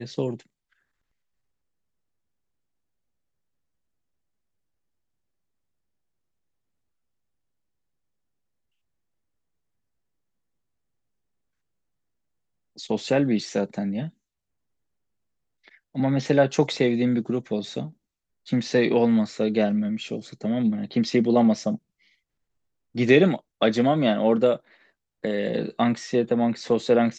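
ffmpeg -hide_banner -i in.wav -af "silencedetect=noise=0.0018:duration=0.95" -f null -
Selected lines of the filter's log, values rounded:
silence_start: 0.73
silence_end: 12.76 | silence_duration: 12.03
silence_start: 14.11
silence_end: 15.64 | silence_duration: 1.53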